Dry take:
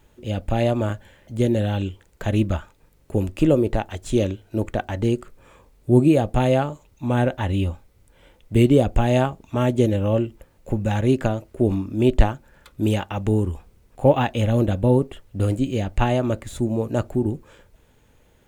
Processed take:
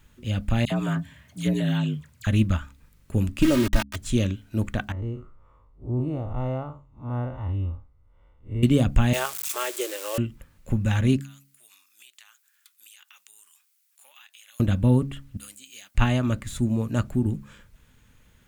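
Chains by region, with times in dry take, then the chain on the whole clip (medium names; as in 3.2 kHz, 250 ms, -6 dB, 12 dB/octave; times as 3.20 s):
0.65–2.27 s: peaking EQ 300 Hz -3.5 dB 1.6 oct + phase dispersion lows, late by 59 ms, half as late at 1.8 kHz + frequency shift +59 Hz
3.42–3.96 s: small samples zeroed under -25.5 dBFS + comb 3.2 ms, depth 80%
4.92–8.63 s: spectral blur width 123 ms + Savitzky-Golay filter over 65 samples + peaking EQ 200 Hz -13.5 dB 1.2 oct
9.13–10.18 s: zero-crossing glitches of -21.5 dBFS + steep high-pass 350 Hz 72 dB/octave + peaking EQ 7.9 kHz +4 dB 0.38 oct
11.20–14.60 s: high-pass 1.2 kHz + differentiator + compression 5:1, threshold -48 dBFS
15.37–15.95 s: high-pass 440 Hz 6 dB/octave + differentiator
whole clip: high-order bell 530 Hz -10 dB; de-hum 68.94 Hz, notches 4; trim +1 dB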